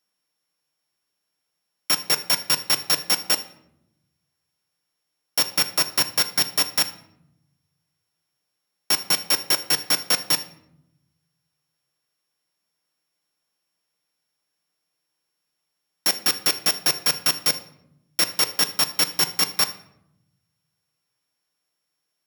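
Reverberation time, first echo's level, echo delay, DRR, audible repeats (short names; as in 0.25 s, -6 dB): 0.75 s, none, none, 8.0 dB, none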